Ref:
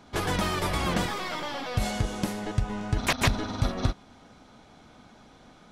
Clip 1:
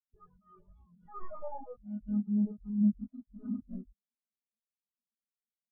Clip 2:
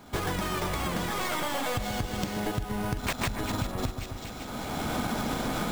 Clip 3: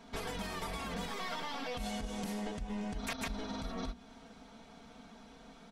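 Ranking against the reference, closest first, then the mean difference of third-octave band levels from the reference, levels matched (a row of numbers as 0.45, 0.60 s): 3, 2, 1; 5.0, 10.0, 26.5 dB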